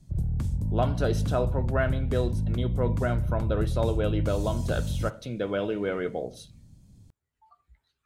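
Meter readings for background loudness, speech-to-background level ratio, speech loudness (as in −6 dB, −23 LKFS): −29.5 LKFS, −1.0 dB, −30.5 LKFS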